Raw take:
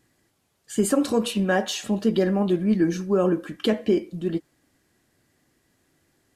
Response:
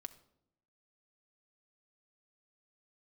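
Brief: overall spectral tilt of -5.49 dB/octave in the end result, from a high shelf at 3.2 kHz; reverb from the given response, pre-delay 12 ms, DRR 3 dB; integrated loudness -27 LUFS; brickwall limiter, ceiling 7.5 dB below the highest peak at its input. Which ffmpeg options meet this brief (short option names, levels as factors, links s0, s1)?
-filter_complex "[0:a]highshelf=f=3200:g=-3.5,alimiter=limit=0.133:level=0:latency=1,asplit=2[s0][s1];[1:a]atrim=start_sample=2205,adelay=12[s2];[s1][s2]afir=irnorm=-1:irlink=0,volume=1.26[s3];[s0][s3]amix=inputs=2:normalize=0,volume=0.891"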